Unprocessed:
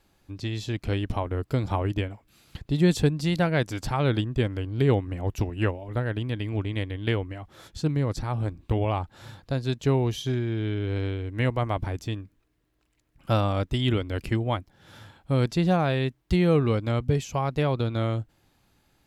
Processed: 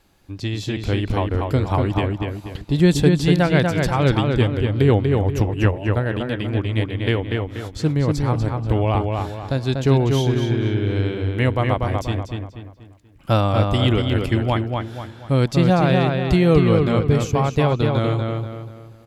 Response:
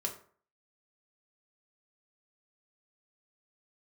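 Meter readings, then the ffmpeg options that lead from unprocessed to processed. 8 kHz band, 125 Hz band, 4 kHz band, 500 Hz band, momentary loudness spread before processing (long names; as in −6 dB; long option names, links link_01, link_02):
+6.0 dB, +7.5 dB, +6.5 dB, +7.5 dB, 9 LU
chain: -filter_complex "[0:a]asplit=2[link_01][link_02];[link_02]adelay=241,lowpass=frequency=4000:poles=1,volume=-3.5dB,asplit=2[link_03][link_04];[link_04]adelay=241,lowpass=frequency=4000:poles=1,volume=0.4,asplit=2[link_05][link_06];[link_06]adelay=241,lowpass=frequency=4000:poles=1,volume=0.4,asplit=2[link_07][link_08];[link_08]adelay=241,lowpass=frequency=4000:poles=1,volume=0.4,asplit=2[link_09][link_10];[link_10]adelay=241,lowpass=frequency=4000:poles=1,volume=0.4[link_11];[link_01][link_03][link_05][link_07][link_09][link_11]amix=inputs=6:normalize=0,volume=5.5dB"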